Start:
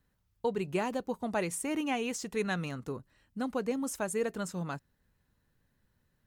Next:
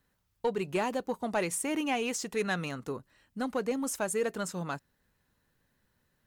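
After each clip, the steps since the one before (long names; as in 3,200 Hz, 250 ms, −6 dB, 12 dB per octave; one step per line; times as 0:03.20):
low-shelf EQ 210 Hz −8 dB
in parallel at −5 dB: hard clipping −31.5 dBFS, distortion −11 dB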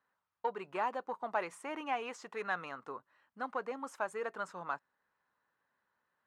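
resonant band-pass 1,100 Hz, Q 1.7
level +2 dB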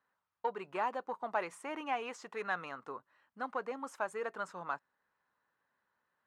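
no processing that can be heard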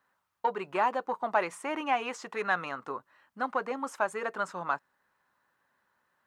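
notch filter 460 Hz, Q 15
level +7.5 dB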